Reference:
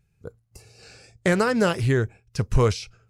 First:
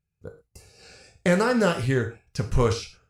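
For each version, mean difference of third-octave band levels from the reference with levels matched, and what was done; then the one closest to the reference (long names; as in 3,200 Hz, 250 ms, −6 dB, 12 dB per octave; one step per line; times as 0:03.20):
3.0 dB: noise gate −57 dBFS, range −13 dB
reverb whose tail is shaped and stops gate 150 ms falling, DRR 4.5 dB
level −2 dB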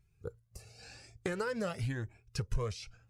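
5.0 dB: downward compressor 6 to 1, threshold −28 dBFS, peak gain reduction 14 dB
flanger whose copies keep moving one way rising 0.94 Hz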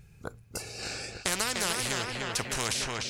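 17.0 dB: on a send: feedback echo with a low-pass in the loop 298 ms, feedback 51%, low-pass 4,400 Hz, level −8 dB
on the sum: every bin compressed towards the loudest bin 4 to 1
level −2.5 dB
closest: first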